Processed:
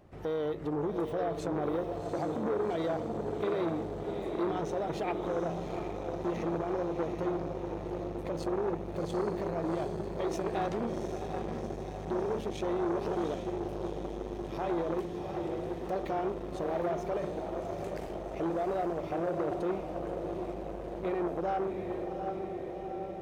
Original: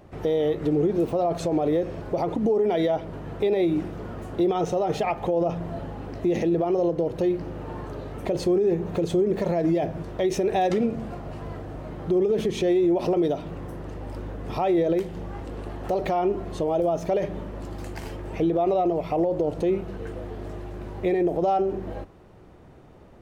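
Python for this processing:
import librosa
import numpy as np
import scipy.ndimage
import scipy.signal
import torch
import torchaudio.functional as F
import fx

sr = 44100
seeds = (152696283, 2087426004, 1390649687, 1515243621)

y = fx.echo_diffused(x, sr, ms=754, feedback_pct=71, wet_db=-5)
y = fx.transformer_sat(y, sr, knee_hz=730.0)
y = F.gain(torch.from_numpy(y), -8.5).numpy()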